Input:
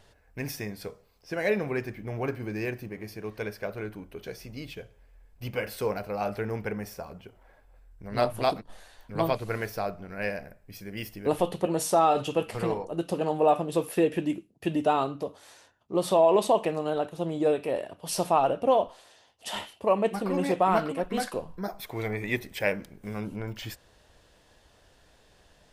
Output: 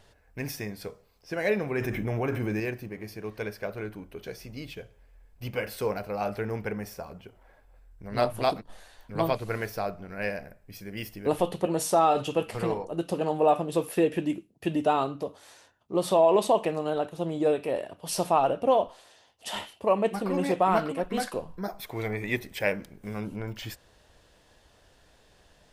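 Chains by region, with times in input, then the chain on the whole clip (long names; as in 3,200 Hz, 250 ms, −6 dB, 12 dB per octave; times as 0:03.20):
0:01.75–0:02.60: Butterworth band-reject 4,500 Hz, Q 4.9 + envelope flattener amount 70%
whole clip: no processing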